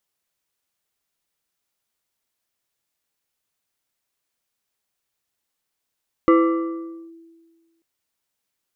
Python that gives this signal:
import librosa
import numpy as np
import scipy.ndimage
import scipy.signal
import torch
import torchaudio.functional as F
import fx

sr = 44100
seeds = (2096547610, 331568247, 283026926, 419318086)

y = fx.fm2(sr, length_s=1.54, level_db=-9.0, carrier_hz=331.0, ratio=2.53, index=0.94, index_s=0.84, decay_s=1.59, shape='linear')